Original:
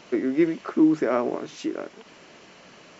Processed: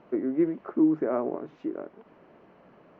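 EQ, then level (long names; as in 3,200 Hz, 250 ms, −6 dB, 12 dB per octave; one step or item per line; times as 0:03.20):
low-pass filter 1,100 Hz 12 dB per octave
−3.5 dB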